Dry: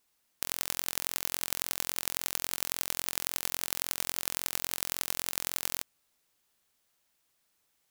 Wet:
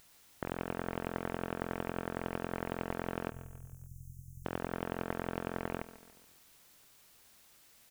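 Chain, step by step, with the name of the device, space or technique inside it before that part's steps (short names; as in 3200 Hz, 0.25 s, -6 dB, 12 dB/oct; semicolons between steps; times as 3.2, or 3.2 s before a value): army field radio (BPF 330–2900 Hz; CVSD 16 kbps; white noise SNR 21 dB); 3.3–4.45 Chebyshev band-stop 130–6300 Hz, order 4; low shelf 210 Hz +3.5 dB; feedback echo 0.142 s, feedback 48%, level -15.5 dB; gain +15.5 dB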